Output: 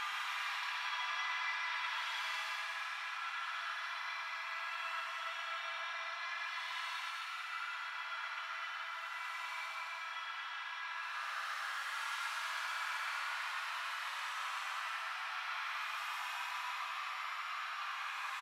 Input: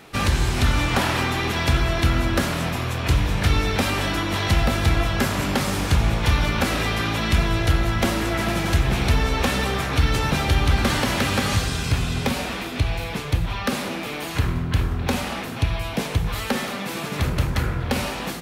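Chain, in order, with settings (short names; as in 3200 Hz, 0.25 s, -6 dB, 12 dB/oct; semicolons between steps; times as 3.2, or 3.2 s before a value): limiter -18.5 dBFS, peak gain reduction 10 dB; steep high-pass 970 Hz 36 dB/oct; reverb RT60 2.1 s, pre-delay 92 ms, DRR 8.5 dB; Paulstretch 13×, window 0.10 s, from 1.5; LPF 2000 Hz 6 dB/oct; frequency-shifting echo 0.121 s, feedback 57%, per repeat +46 Hz, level -8 dB; gain -6 dB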